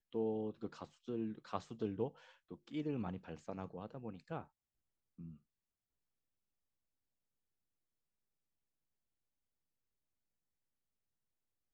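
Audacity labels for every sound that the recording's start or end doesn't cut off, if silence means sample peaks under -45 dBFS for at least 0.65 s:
5.200000	5.310000	sound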